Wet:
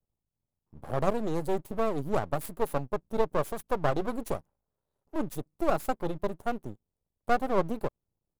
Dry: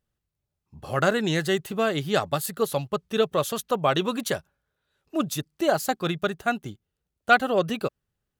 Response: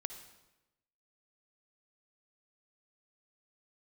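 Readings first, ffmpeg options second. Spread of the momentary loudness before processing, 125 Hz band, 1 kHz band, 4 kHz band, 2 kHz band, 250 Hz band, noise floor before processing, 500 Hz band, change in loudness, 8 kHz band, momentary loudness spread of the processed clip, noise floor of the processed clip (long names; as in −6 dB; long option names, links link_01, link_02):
10 LU, −5.0 dB, −5.0 dB, −17.5 dB, −13.0 dB, −5.5 dB, −84 dBFS, −5.0 dB, −6.0 dB, −13.0 dB, 8 LU, below −85 dBFS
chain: -af "firequalizer=gain_entry='entry(980,0);entry(1500,-23);entry(9400,-5)':delay=0.05:min_phase=1,aeval=exprs='max(val(0),0)':channel_layout=same"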